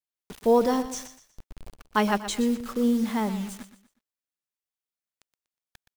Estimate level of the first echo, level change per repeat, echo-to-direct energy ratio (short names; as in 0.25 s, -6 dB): -12.5 dB, -9.5 dB, -12.0 dB